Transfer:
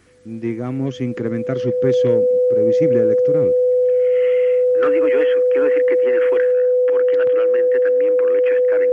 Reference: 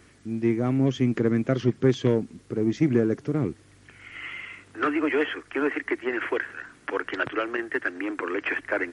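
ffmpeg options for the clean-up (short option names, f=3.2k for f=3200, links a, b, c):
-af "bandreject=f=500:w=30,asetnsamples=n=441:p=0,asendcmd='6.52 volume volume 4dB',volume=0dB"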